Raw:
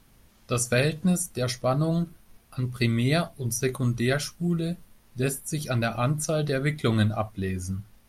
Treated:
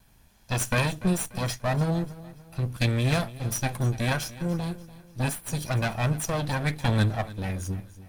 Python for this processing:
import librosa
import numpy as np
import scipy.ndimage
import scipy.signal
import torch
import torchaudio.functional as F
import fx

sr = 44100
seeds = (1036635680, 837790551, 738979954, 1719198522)

y = fx.lower_of_two(x, sr, delay_ms=1.2)
y = fx.echo_feedback(y, sr, ms=292, feedback_pct=40, wet_db=-17.5)